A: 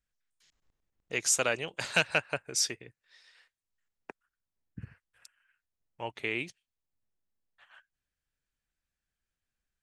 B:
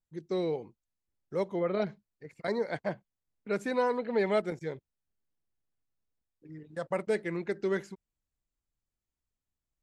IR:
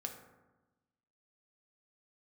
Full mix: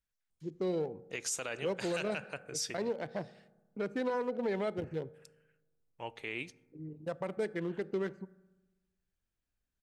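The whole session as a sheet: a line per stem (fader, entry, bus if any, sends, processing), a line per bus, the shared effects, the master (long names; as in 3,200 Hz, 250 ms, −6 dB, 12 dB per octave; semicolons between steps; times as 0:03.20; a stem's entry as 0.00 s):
−6.0 dB, 0.00 s, send −11 dB, no processing
0.0 dB, 0.30 s, send −10.5 dB, adaptive Wiener filter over 25 samples; downward compressor 1.5 to 1, threshold −38 dBFS, peak gain reduction 6 dB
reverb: on, RT60 1.1 s, pre-delay 3 ms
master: brickwall limiter −25 dBFS, peak gain reduction 10.5 dB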